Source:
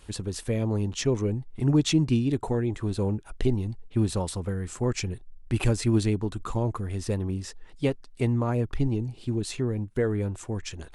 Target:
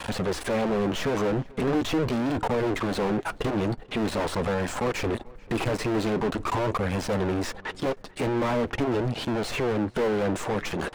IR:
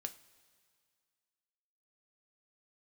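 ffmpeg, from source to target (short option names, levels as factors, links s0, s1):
-filter_complex "[0:a]deesser=0.95,aeval=exprs='max(val(0),0)':c=same,asplit=2[s0][s1];[s1]highpass=f=720:p=1,volume=158,asoftclip=type=tanh:threshold=0.237[s2];[s0][s2]amix=inputs=2:normalize=0,lowpass=f=1400:p=1,volume=0.501,flanger=delay=1.2:depth=5.3:regen=-50:speed=0.43:shape=sinusoidal,asplit=2[s3][s4];[s4]adelay=439,lowpass=f=2800:p=1,volume=0.0708,asplit=2[s5][s6];[s6]adelay=439,lowpass=f=2800:p=1,volume=0.36[s7];[s5][s7]amix=inputs=2:normalize=0[s8];[s3][s8]amix=inputs=2:normalize=0"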